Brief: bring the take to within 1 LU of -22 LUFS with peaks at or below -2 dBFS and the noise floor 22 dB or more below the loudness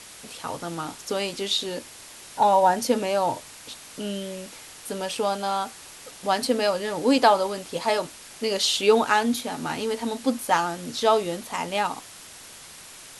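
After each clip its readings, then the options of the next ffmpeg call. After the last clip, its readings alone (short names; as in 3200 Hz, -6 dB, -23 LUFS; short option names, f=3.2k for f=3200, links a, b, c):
noise floor -45 dBFS; noise floor target -47 dBFS; loudness -24.5 LUFS; peak -5.5 dBFS; loudness target -22.0 LUFS
-> -af "afftdn=nr=6:nf=-45"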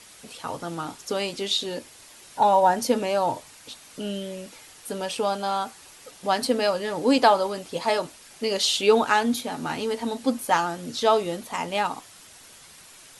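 noise floor -49 dBFS; loudness -24.5 LUFS; peak -6.0 dBFS; loudness target -22.0 LUFS
-> -af "volume=2.5dB"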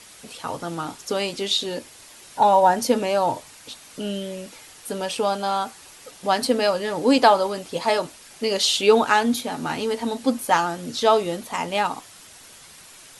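loudness -22.0 LUFS; peak -3.5 dBFS; noise floor -47 dBFS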